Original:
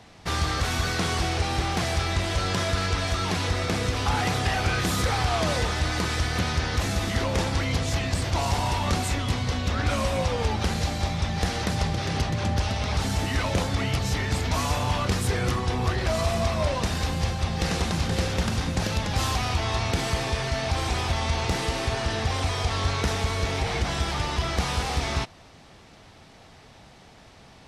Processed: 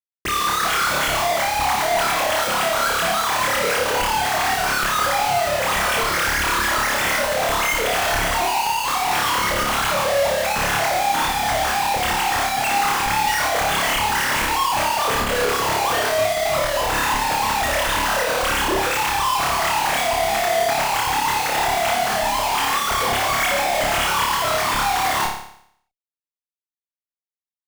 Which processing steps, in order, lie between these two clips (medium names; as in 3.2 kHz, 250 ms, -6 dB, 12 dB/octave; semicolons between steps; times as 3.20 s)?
formants replaced by sine waves; peaking EQ 980 Hz +5.5 dB 2.6 oct; compression, threshold -18 dBFS, peak gain reduction 9.5 dB; Schmitt trigger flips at -33.5 dBFS; flutter echo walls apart 4.9 m, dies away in 0.66 s